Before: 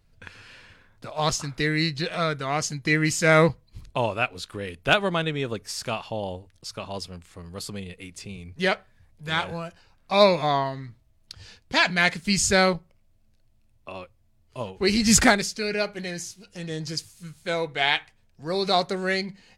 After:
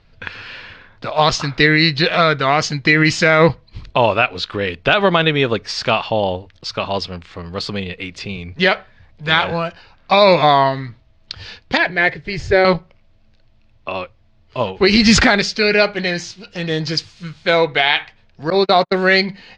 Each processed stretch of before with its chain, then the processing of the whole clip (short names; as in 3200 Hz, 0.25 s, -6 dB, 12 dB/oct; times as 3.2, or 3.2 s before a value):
11.77–12.65 block floating point 5-bit + EQ curve 140 Hz 0 dB, 210 Hz -20 dB, 330 Hz 0 dB, 600 Hz -5 dB, 1300 Hz -17 dB, 1800 Hz -6 dB, 2700 Hz -16 dB, 11000 Hz -22 dB
18.5–18.92 gate -27 dBFS, range -45 dB + bell 5000 Hz -7 dB 1.3 oct
whole clip: LPF 4600 Hz 24 dB/oct; low shelf 380 Hz -6 dB; maximiser +16 dB; gain -1 dB